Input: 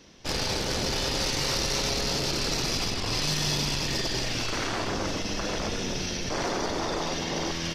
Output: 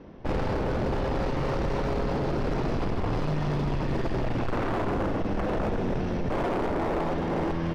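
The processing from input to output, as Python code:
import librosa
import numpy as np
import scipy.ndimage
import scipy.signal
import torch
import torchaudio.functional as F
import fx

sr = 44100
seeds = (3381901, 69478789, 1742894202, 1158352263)

p1 = scipy.signal.sosfilt(scipy.signal.butter(2, 1000.0, 'lowpass', fs=sr, output='sos'), x)
p2 = fx.rider(p1, sr, range_db=10, speed_s=0.5)
p3 = p1 + F.gain(torch.from_numpy(p2), 2.0).numpy()
y = np.clip(p3, -10.0 ** (-24.0 / 20.0), 10.0 ** (-24.0 / 20.0))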